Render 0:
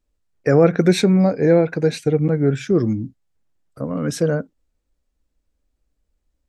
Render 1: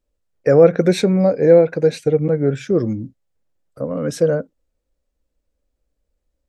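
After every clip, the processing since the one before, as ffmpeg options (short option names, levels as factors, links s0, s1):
-af "equalizer=f=530:w=2.8:g=8.5,volume=0.794"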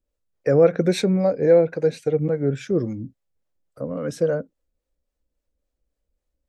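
-filter_complex "[0:a]acrossover=split=420[s0][s1];[s0]aeval=exprs='val(0)*(1-0.5/2+0.5/2*cos(2*PI*3.6*n/s))':c=same[s2];[s1]aeval=exprs='val(0)*(1-0.5/2-0.5/2*cos(2*PI*3.6*n/s))':c=same[s3];[s2][s3]amix=inputs=2:normalize=0,volume=0.75"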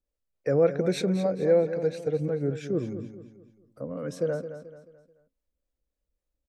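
-af "aecho=1:1:217|434|651|868:0.282|0.11|0.0429|0.0167,volume=0.473"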